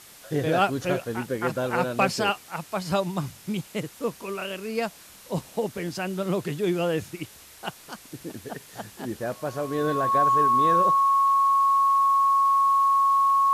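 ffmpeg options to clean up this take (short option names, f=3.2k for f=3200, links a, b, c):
-af "adeclick=t=4,bandreject=f=1.1k:w=30,afftdn=nr=21:nf=-49"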